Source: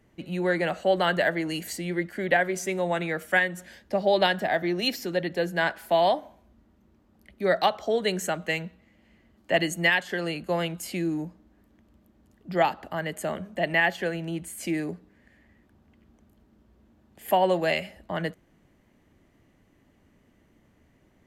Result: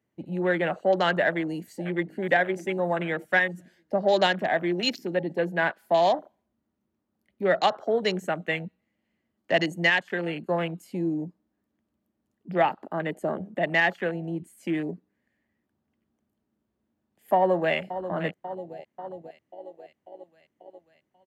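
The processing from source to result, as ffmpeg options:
ffmpeg -i in.wav -filter_complex "[0:a]asplit=2[link_01][link_02];[link_02]afade=type=in:start_time=1.17:duration=0.01,afade=type=out:start_time=2.2:duration=0.01,aecho=0:1:600|1200|1800|2400|3000|3600|4200:0.133352|0.0866789|0.0563413|0.0366218|0.0238042|0.0154727|0.0100573[link_03];[link_01][link_03]amix=inputs=2:normalize=0,asettb=1/sr,asplit=3[link_04][link_05][link_06];[link_04]atrim=end=12.814[link_07];[link_05]atrim=start=12.81:end=13.59,asetpts=PTS-STARTPTS,afade=type=in:duration=0.004:curve=qsin,afade=type=out:start_time=0.776:duration=0.004:curve=qsin,equalizer=frequency=350:width_type=o:width=0.77:gain=5.5[link_08];[link_06]atrim=start=13.586[link_09];[link_07][link_08]acrossfade=duration=0.004:curve1=hsin:curve2=qsin[link_10];[link_10][link_09]acrossfade=duration=0.004:curve1=qsin:curve2=hsin,asplit=2[link_11][link_12];[link_12]afade=type=in:start_time=17.36:duration=0.01,afade=type=out:start_time=17.76:duration=0.01,aecho=0:1:540|1080|1620|2160|2700|3240|3780|4320|4860|5400|5940|6480:0.281838|0.211379|0.158534|0.118901|0.0891754|0.0668815|0.0501612|0.0376209|0.0282157|0.0211617|0.0158713|0.0119035[link_13];[link_11][link_13]amix=inputs=2:normalize=0,afwtdn=0.02,highpass=110,acontrast=45,volume=-5dB" out.wav

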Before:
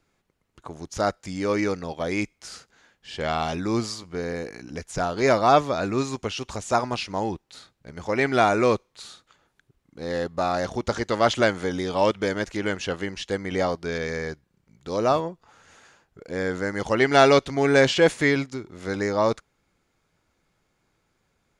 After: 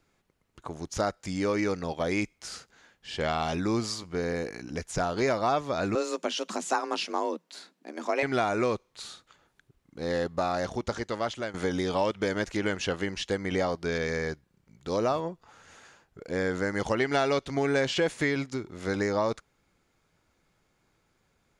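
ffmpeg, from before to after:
ffmpeg -i in.wav -filter_complex "[0:a]asettb=1/sr,asplit=3[link_01][link_02][link_03];[link_01]atrim=end=5.954[link_04];[link_02]atrim=start=5.95:end=8.23,asetpts=PTS-STARTPTS,afade=type=in:duration=0.004:curve=qsin,afade=type=out:start_time=2.276:duration=0.004:curve=qsin,afreqshift=150[link_05];[link_03]atrim=start=8.226[link_06];[link_04][link_05]acrossfade=duration=0.004:curve1=hsin:curve2=qsin[link_07];[link_07][link_06]acrossfade=duration=0.004:curve1=qsin:curve2=hsin,asplit=2[link_08][link_09];[link_08]atrim=end=11.54,asetpts=PTS-STARTPTS,afade=type=out:start_time=10.31:duration=1.23:silence=0.141254[link_10];[link_09]atrim=start=11.54,asetpts=PTS-STARTPTS,afade=type=in:duration=0.004:curve=hsin:silence=0.141254[link_11];[link_10][link_11]concat=n=2:v=0:a=1,acompressor=threshold=-24dB:ratio=4" out.wav

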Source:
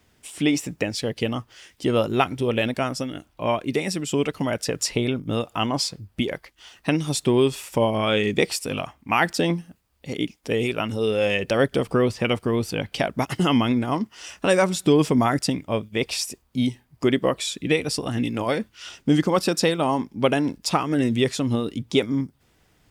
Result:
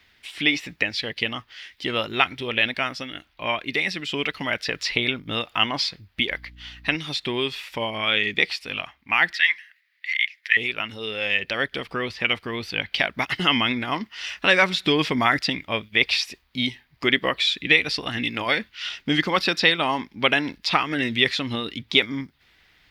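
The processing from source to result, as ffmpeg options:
ffmpeg -i in.wav -filter_complex "[0:a]asettb=1/sr,asplit=3[link_01][link_02][link_03];[link_01]atrim=end=6.304[link_04];[link_02]atrim=start=6.3:end=6.96,asetpts=PTS-STARTPTS,afade=type=in:duration=0.004:curve=qsin,afade=type=out:start_time=0.656:duration=0.004:curve=qsin,aeval=exprs='val(0)+0.01*(sin(2*PI*60*n/s)+sin(2*PI*2*60*n/s)/2+sin(2*PI*3*60*n/s)/3+sin(2*PI*4*60*n/s)/4+sin(2*PI*5*60*n/s)/5)':channel_layout=same[link_05];[link_03]atrim=start=6.956[link_06];[link_04][link_05]acrossfade=duration=0.004:curve1=hsin:curve2=qsin[link_07];[link_07][link_06]acrossfade=duration=0.004:curve1=qsin:curve2=hsin,asettb=1/sr,asplit=3[link_08][link_09][link_10];[link_08]atrim=end=9.334[link_11];[link_09]atrim=start=9.33:end=10.57,asetpts=PTS-STARTPTS,afade=type=in:duration=0.004:curve=qsin,afade=type=out:start_time=1.236:duration=0.004:curve=qsin,highpass=frequency=1900:width_type=q:width=6[link_12];[link_10]atrim=start=10.566[link_13];[link_11][link_12]acrossfade=duration=0.004:curve1=hsin:curve2=qsin[link_14];[link_14][link_13]acrossfade=duration=0.004:curve1=qsin:curve2=hsin,acrossover=split=5500[link_15][link_16];[link_16]acompressor=threshold=-39dB:ratio=4:attack=1:release=60[link_17];[link_15][link_17]amix=inputs=2:normalize=0,equalizer=frequency=125:width_type=o:width=1:gain=-6,equalizer=frequency=250:width_type=o:width=1:gain=-3,equalizer=frequency=500:width_type=o:width=1:gain=-4,equalizer=frequency=2000:width_type=o:width=1:gain=11,equalizer=frequency=4000:width_type=o:width=1:gain=11,equalizer=frequency=8000:width_type=o:width=1:gain=-10,dynaudnorm=framelen=130:gausssize=31:maxgain=11.5dB,volume=-1dB" out.wav

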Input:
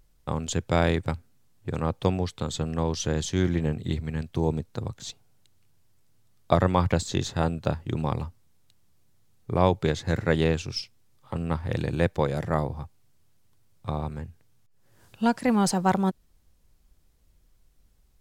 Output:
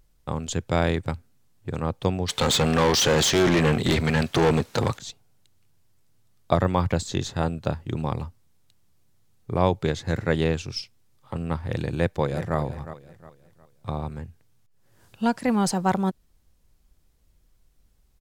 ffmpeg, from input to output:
ffmpeg -i in.wav -filter_complex "[0:a]asplit=3[link_01][link_02][link_03];[link_01]afade=type=out:start_time=2.28:duration=0.02[link_04];[link_02]asplit=2[link_05][link_06];[link_06]highpass=frequency=720:poles=1,volume=31dB,asoftclip=type=tanh:threshold=-11dB[link_07];[link_05][link_07]amix=inputs=2:normalize=0,lowpass=frequency=4800:poles=1,volume=-6dB,afade=type=in:start_time=2.28:duration=0.02,afade=type=out:start_time=4.97:duration=0.02[link_08];[link_03]afade=type=in:start_time=4.97:duration=0.02[link_09];[link_04][link_08][link_09]amix=inputs=3:normalize=0,asettb=1/sr,asplit=3[link_10][link_11][link_12];[link_10]atrim=end=6.564[link_13];[link_11]atrim=start=6.56:end=6.98,asetpts=PTS-STARTPTS,afade=type=in:duration=0.004:curve=qsin,afade=type=out:start_time=0.416:duration=0.004:curve=qsin,deesser=0.85[link_14];[link_12]atrim=start=6.976[link_15];[link_13][link_14]acrossfade=duration=0.004:curve1=hsin:curve2=qsin[link_16];[link_16][link_15]acrossfade=duration=0.004:curve1=qsin:curve2=hsin,asplit=2[link_17][link_18];[link_18]afade=type=in:start_time=11.85:duration=0.01,afade=type=out:start_time=12.57:duration=0.01,aecho=0:1:360|720|1080|1440:0.237137|0.0829981|0.0290493|0.0101673[link_19];[link_17][link_19]amix=inputs=2:normalize=0" out.wav

